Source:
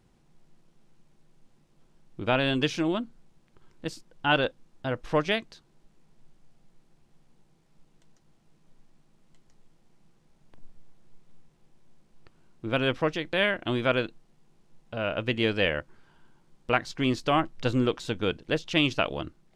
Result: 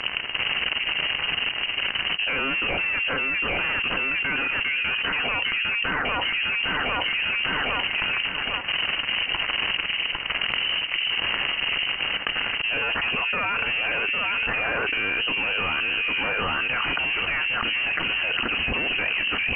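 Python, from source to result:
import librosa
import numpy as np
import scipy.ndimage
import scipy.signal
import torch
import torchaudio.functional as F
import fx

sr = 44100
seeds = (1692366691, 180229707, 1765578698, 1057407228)

y = fx.tube_stage(x, sr, drive_db=30.0, bias=0.6)
y = fx.peak_eq(y, sr, hz=1300.0, db=5.5, octaves=1.7)
y = fx.leveller(y, sr, passes=3)
y = scipy.signal.sosfilt(scipy.signal.butter(2, 51.0, 'highpass', fs=sr, output='sos'), y)
y = fx.echo_alternate(y, sr, ms=402, hz=1100.0, feedback_pct=58, wet_db=-7)
y = fx.freq_invert(y, sr, carrier_hz=3000)
y = fx.air_absorb(y, sr, metres=62.0)
y = fx.env_flatten(y, sr, amount_pct=100)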